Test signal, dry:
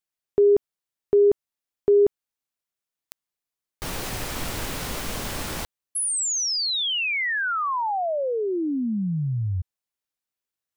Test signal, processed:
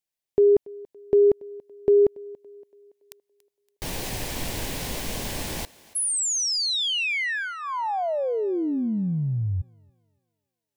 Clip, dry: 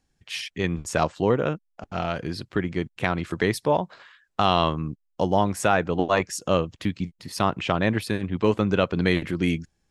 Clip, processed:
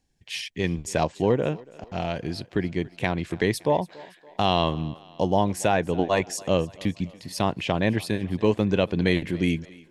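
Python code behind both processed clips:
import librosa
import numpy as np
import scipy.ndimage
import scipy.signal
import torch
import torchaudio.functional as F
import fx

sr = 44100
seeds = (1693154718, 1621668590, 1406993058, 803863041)

y = fx.peak_eq(x, sr, hz=1300.0, db=-11.5, octaves=0.41)
y = fx.echo_thinned(y, sr, ms=283, feedback_pct=52, hz=270.0, wet_db=-21.0)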